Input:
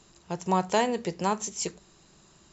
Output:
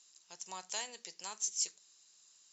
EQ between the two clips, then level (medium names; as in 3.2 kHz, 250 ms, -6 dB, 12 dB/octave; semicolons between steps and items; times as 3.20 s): band-pass filter 6.1 kHz, Q 1.5; 0.0 dB